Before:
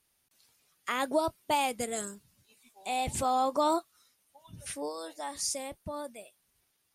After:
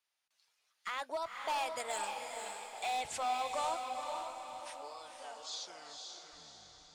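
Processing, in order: tape stop on the ending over 1.94 s; Doppler pass-by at 2.45 s, 6 m/s, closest 2.7 m; in parallel at +1 dB: compression, threshold -44 dBFS, peak gain reduction 12.5 dB; on the sum: three-band isolator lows -22 dB, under 570 Hz, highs -16 dB, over 7.1 kHz; hard clipper -32.5 dBFS, distortion -13 dB; on a send: echo that smears into a reverb 502 ms, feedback 48%, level -4 dB; on the sum: trim +1 dB

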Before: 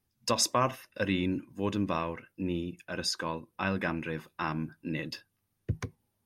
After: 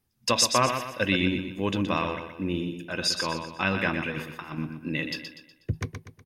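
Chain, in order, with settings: dynamic bell 2.9 kHz, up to +7 dB, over -49 dBFS, Q 1.1; 4.10–4.58 s: compressor with a negative ratio -37 dBFS, ratio -0.5; on a send: feedback delay 122 ms, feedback 42%, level -7.5 dB; on the sum: trim +3 dB

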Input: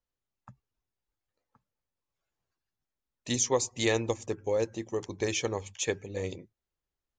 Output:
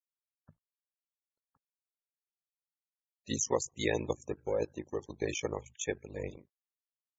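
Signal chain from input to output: companding laws mixed up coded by A; ring modulator 26 Hz; loudest bins only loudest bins 64

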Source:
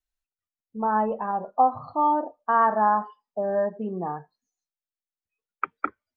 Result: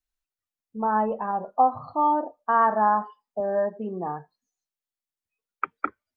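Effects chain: 3.40–4.07 s: high-pass 180 Hz

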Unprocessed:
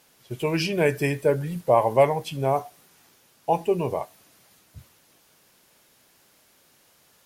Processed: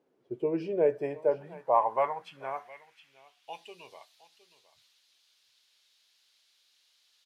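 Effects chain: delay 714 ms -17 dB; band-pass sweep 370 Hz -> 3.9 kHz, 0.39–3.73 s

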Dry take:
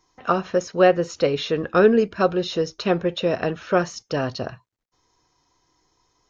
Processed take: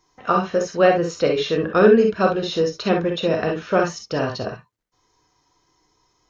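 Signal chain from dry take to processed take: gated-style reverb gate 80 ms rising, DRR 2 dB

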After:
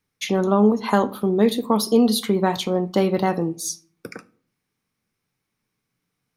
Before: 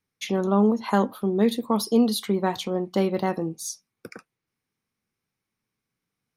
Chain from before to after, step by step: simulated room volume 360 m³, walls furnished, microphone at 0.4 m; in parallel at -2.5 dB: compression, threshold -19 dBFS, peak gain reduction 5.5 dB

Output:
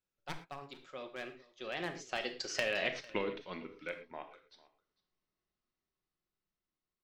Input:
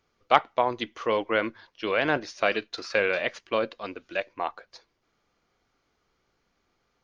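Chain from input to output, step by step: one-sided wavefolder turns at -15.5 dBFS; Doppler pass-by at 2.88 s, 42 m/s, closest 3.7 m; compression 10:1, threshold -39 dBFS, peak gain reduction 16.5 dB; peaking EQ 860 Hz -5.5 dB 2.9 oct; delay 450 ms -22 dB; on a send at -6 dB: reverberation, pre-delay 5 ms; on the sum: trim +11.5 dB

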